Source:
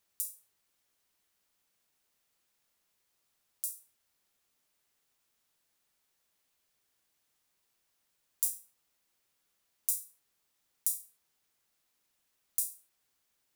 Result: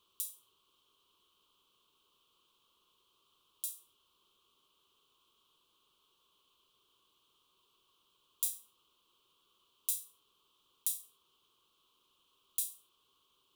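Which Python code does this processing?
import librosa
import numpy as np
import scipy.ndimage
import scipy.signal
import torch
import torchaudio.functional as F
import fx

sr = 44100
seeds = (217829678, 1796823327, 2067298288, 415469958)

p1 = fx.curve_eq(x, sr, hz=(260.0, 390.0, 750.0, 1100.0, 1900.0, 3100.0, 5000.0, 7800.0), db=(0, 9, -9, 14, -21, 13, -5, -7))
p2 = 10.0 ** (-21.0 / 20.0) * np.tanh(p1 / 10.0 ** (-21.0 / 20.0))
y = p1 + F.gain(torch.from_numpy(p2), -4.0).numpy()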